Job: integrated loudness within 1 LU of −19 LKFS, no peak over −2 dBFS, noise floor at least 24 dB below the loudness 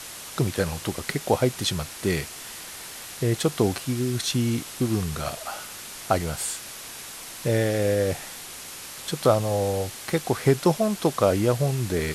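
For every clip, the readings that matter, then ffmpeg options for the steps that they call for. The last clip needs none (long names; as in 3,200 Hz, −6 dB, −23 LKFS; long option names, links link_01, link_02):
background noise floor −40 dBFS; target noise floor −50 dBFS; integrated loudness −25.5 LKFS; sample peak −7.0 dBFS; target loudness −19.0 LKFS
→ -af "afftdn=noise_reduction=10:noise_floor=-40"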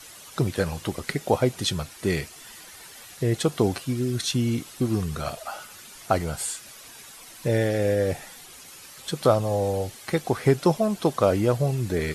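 background noise floor −46 dBFS; target noise floor −50 dBFS
→ -af "afftdn=noise_reduction=6:noise_floor=-46"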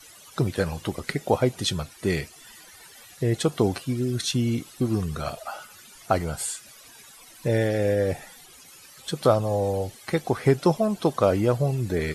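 background noise floor −49 dBFS; target noise floor −50 dBFS
→ -af "afftdn=noise_reduction=6:noise_floor=-49"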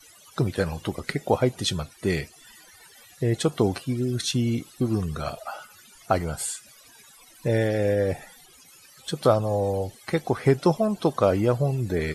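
background noise floor −52 dBFS; integrated loudness −25.5 LKFS; sample peak −7.0 dBFS; target loudness −19.0 LKFS
→ -af "volume=6.5dB,alimiter=limit=-2dB:level=0:latency=1"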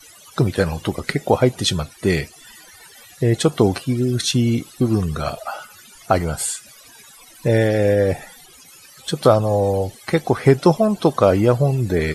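integrated loudness −19.0 LKFS; sample peak −2.0 dBFS; background noise floor −46 dBFS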